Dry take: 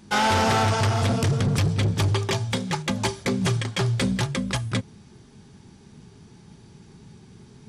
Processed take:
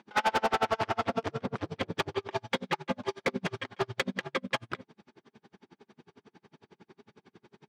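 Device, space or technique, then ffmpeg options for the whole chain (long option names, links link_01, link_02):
helicopter radio: -af "highpass=340,lowpass=2700,aeval=exprs='val(0)*pow(10,-38*(0.5-0.5*cos(2*PI*11*n/s))/20)':channel_layout=same,asoftclip=type=hard:threshold=-25.5dB,volume=5dB"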